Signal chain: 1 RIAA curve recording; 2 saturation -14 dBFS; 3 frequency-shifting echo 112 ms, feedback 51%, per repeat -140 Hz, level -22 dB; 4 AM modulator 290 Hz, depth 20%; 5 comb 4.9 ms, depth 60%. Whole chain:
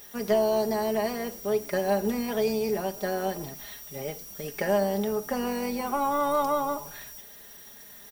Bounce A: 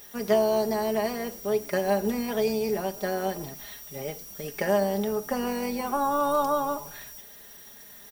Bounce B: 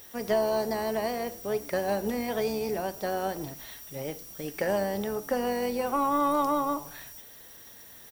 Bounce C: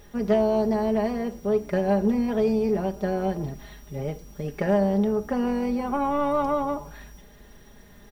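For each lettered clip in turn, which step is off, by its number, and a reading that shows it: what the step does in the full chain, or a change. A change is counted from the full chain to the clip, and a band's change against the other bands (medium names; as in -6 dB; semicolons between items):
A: 2, distortion -24 dB; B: 5, 1 kHz band +1.5 dB; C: 1, 125 Hz band +8.0 dB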